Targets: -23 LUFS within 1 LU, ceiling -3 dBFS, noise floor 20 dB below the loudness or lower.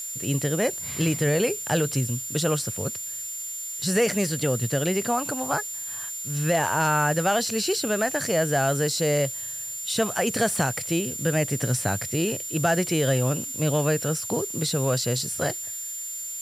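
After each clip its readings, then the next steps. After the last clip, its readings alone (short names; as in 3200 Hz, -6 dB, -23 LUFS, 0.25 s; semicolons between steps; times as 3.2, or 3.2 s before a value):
steady tone 7200 Hz; tone level -32 dBFS; noise floor -34 dBFS; noise floor target -45 dBFS; loudness -25.0 LUFS; peak -10.0 dBFS; loudness target -23.0 LUFS
-> notch 7200 Hz, Q 30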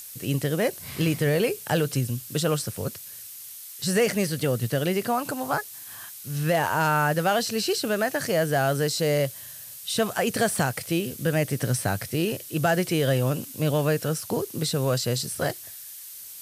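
steady tone none; noise floor -41 dBFS; noise floor target -46 dBFS
-> denoiser 6 dB, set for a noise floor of -41 dBFS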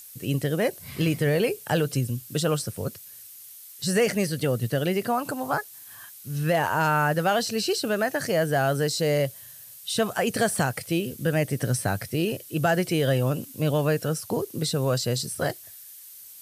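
noise floor -46 dBFS; loudness -25.5 LUFS; peak -11.0 dBFS; loudness target -23.0 LUFS
-> gain +2.5 dB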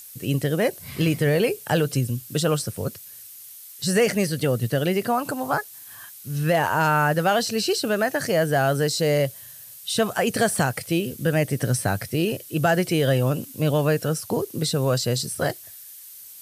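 loudness -23.0 LUFS; peak -8.5 dBFS; noise floor -43 dBFS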